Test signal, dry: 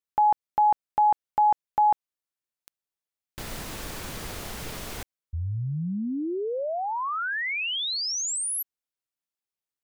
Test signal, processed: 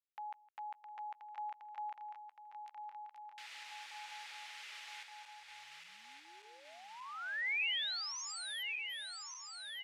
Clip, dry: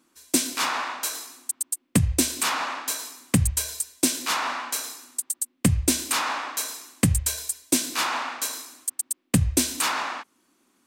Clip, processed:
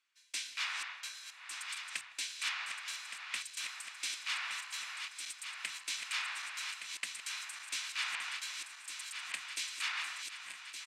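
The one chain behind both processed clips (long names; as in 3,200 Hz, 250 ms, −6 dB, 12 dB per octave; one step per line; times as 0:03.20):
feedback delay that plays each chunk backwards 584 ms, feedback 80%, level −6.5 dB
four-pole ladder band-pass 2,800 Hz, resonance 30%
far-end echo of a speakerphone 160 ms, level −21 dB
level +2 dB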